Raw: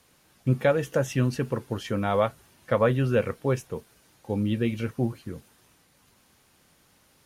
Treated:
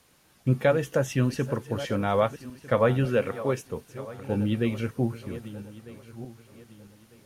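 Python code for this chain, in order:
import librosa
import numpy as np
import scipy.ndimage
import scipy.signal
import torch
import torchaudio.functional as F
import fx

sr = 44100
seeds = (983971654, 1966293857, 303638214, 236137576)

y = fx.reverse_delay_fb(x, sr, ms=625, feedback_pct=53, wet_db=-14)
y = fx.highpass(y, sr, hz=190.0, slope=6, at=(3.05, 3.65))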